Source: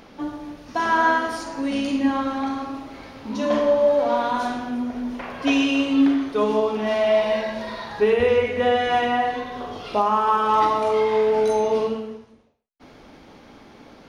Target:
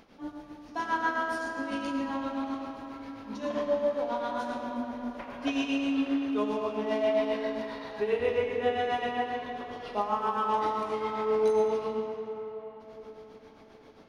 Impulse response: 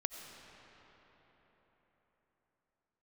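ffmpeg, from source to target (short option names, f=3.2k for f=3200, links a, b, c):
-filter_complex "[0:a]tremolo=f=7.5:d=0.65[a];[1:a]atrim=start_sample=2205[b];[a][b]afir=irnorm=-1:irlink=0,volume=-7dB"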